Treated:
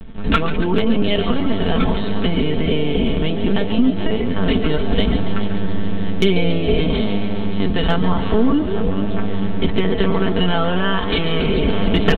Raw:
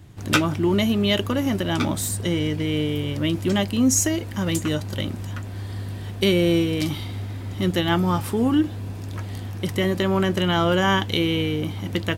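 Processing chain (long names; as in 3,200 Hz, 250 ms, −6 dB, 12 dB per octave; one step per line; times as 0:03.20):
low-shelf EQ 60 Hz +4.5 dB
repeating echo 430 ms, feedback 48%, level −14.5 dB
linear-prediction vocoder at 8 kHz pitch kept
downward compressor 6 to 1, threshold −22 dBFS, peak gain reduction 9 dB
high-frequency loss of the air 70 metres
notch filter 2,000 Hz, Q 27
on a send: echo with shifted repeats 140 ms, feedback 60%, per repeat +90 Hz, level −11 dB
on the sum: speech leveller 2 s
hard clipping −13.5 dBFS, distortion −37 dB
comb filter 4.5 ms, depth 67%
level +8.5 dB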